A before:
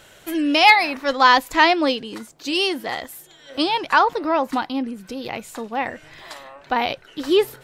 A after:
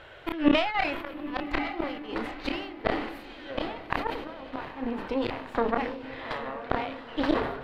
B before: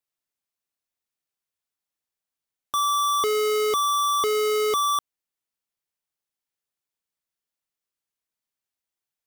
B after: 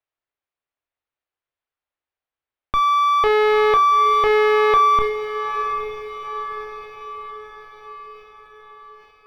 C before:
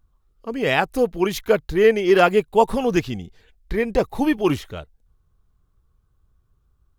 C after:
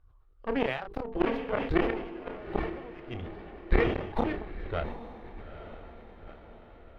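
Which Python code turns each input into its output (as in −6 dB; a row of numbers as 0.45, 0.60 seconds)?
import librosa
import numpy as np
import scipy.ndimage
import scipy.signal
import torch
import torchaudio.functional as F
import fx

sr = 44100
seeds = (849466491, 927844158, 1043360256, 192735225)

y = fx.peak_eq(x, sr, hz=190.0, db=-15.0, octaves=0.76)
y = fx.hum_notches(y, sr, base_hz=50, count=9)
y = fx.over_compress(y, sr, threshold_db=-21.0, ratio=-0.5)
y = fx.cheby_harmonics(y, sr, harmonics=(6, 7, 8), levels_db=(-17, -22, -15), full_scale_db=-6.0)
y = fx.gate_flip(y, sr, shuts_db=-16.0, range_db=-29)
y = fx.air_absorb(y, sr, metres=400.0)
y = fx.doubler(y, sr, ms=30.0, db=-12.5)
y = fx.echo_diffused(y, sr, ms=883, feedback_pct=55, wet_db=-10.5)
y = fx.sustainer(y, sr, db_per_s=60.0)
y = y * 10.0 ** (-6 / 20.0) / np.max(np.abs(y))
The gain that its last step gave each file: +8.0, +13.0, +5.5 decibels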